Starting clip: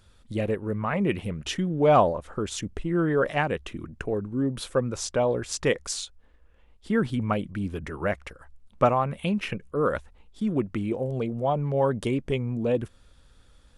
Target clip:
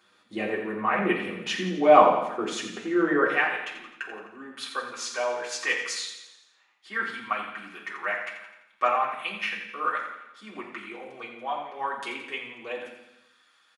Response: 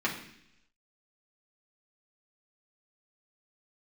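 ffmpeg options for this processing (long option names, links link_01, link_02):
-filter_complex "[0:a]asetnsamples=nb_out_samples=441:pad=0,asendcmd='3.25 highpass f 1100',highpass=430,aecho=1:1:85|170|255|340|425|510:0.316|0.168|0.0888|0.0471|0.025|0.0132[link_01];[1:a]atrim=start_sample=2205[link_02];[link_01][link_02]afir=irnorm=-1:irlink=0,volume=-4dB"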